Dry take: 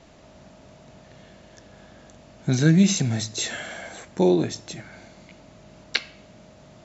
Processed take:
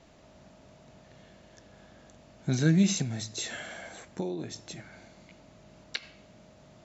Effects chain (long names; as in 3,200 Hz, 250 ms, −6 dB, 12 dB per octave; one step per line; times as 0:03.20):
0:03.02–0:06.03: downward compressor 10 to 1, threshold −24 dBFS, peak gain reduction 10.5 dB
level −6 dB